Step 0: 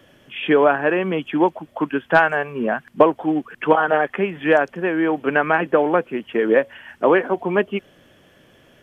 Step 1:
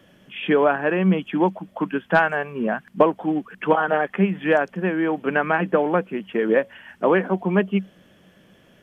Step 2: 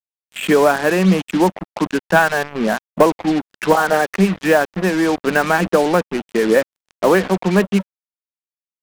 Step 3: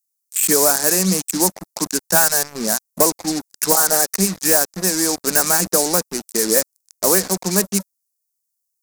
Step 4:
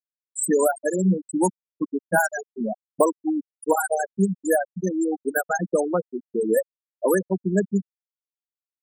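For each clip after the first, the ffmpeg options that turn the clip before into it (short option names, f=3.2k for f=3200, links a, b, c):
-af "equalizer=f=190:w=6.6:g=14.5,volume=-3dB"
-af "acontrast=33,acrusher=bits=3:mix=0:aa=0.5"
-af "aexciter=amount=7.8:drive=9.5:freq=4.7k,volume=-6dB"
-af "afftfilt=real='re*gte(hypot(re,im),0.355)':imag='im*gte(hypot(re,im),0.355)':win_size=1024:overlap=0.75"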